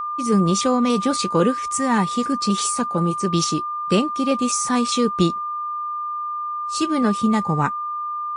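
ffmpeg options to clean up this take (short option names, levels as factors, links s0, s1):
-af "bandreject=f=1200:w=30"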